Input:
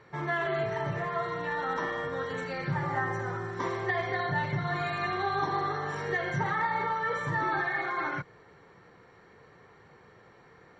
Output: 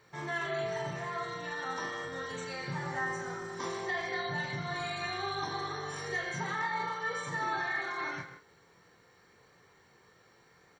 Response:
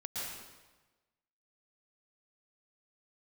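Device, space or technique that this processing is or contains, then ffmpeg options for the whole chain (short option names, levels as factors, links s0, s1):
keyed gated reverb: -filter_complex "[0:a]aemphasis=mode=production:type=75fm,asettb=1/sr,asplit=3[s0][s1][s2];[s0]atrim=end=6.244[s3];[s1]atrim=start=6.24:end=7.57,asetpts=PTS-STARTPTS,afade=t=in:d=0.004:c=qsin,afade=t=out:st=1.326:d=0.004:c=qsin,highpass=130[s4];[s2]atrim=start=7.566[s5];[s3][s4]acrossfade=d=0.004:c1=hsin:c2=qsin[s6];[s6][s5]acrossfade=d=0.004:c1=qsin:c2=hsin,asplit=3[s7][s8][s9];[1:a]atrim=start_sample=2205[s10];[s8][s10]afir=irnorm=-1:irlink=0[s11];[s9]apad=whole_len=476132[s12];[s11][s12]sidechaingate=range=0.0224:threshold=0.00316:ratio=16:detection=peak,volume=0.266[s13];[s7][s13]amix=inputs=2:normalize=0,equalizer=f=6100:t=o:w=1.6:g=4.5,aecho=1:1:23|41:0.473|0.398,volume=0.376"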